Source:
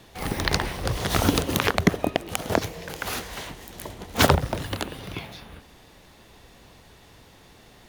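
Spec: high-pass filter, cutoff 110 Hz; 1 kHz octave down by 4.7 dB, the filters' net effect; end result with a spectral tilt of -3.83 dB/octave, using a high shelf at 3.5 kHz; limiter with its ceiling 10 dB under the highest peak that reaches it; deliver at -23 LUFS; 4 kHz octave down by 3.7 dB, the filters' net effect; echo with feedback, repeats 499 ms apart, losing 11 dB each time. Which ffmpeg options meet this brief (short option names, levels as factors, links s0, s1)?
-af "highpass=110,equalizer=f=1000:t=o:g=-6.5,highshelf=f=3500:g=4.5,equalizer=f=4000:t=o:g=-7.5,alimiter=limit=0.299:level=0:latency=1,aecho=1:1:499|998|1497:0.282|0.0789|0.0221,volume=2.11"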